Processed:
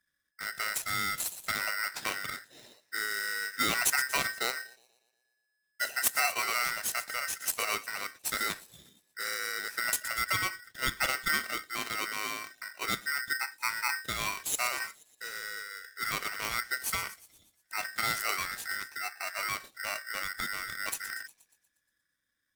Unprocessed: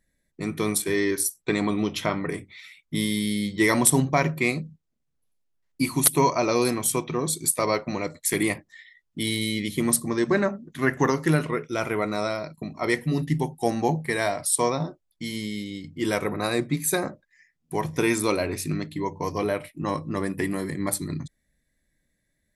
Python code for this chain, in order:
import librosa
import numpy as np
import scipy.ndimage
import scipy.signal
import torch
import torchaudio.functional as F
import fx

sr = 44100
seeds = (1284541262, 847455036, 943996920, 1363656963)

y = fx.echo_wet_highpass(x, sr, ms=119, feedback_pct=54, hz=4100.0, wet_db=-11.0)
y = y * np.sign(np.sin(2.0 * np.pi * 1700.0 * np.arange(len(y)) / sr))
y = y * librosa.db_to_amplitude(-8.5)